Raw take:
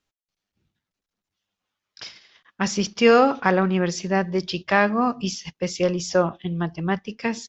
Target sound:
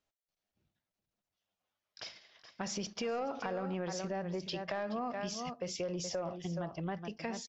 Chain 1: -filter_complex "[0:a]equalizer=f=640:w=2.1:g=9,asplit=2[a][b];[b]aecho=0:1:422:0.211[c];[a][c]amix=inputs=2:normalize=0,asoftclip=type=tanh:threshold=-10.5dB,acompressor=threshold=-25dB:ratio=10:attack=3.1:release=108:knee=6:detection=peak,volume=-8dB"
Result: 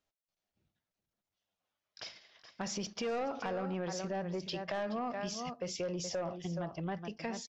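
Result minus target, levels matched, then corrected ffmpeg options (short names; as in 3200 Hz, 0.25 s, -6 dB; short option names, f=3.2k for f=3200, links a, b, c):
soft clip: distortion +8 dB
-filter_complex "[0:a]equalizer=f=640:w=2.1:g=9,asplit=2[a][b];[b]aecho=0:1:422:0.211[c];[a][c]amix=inputs=2:normalize=0,asoftclip=type=tanh:threshold=-4dB,acompressor=threshold=-25dB:ratio=10:attack=3.1:release=108:knee=6:detection=peak,volume=-8dB"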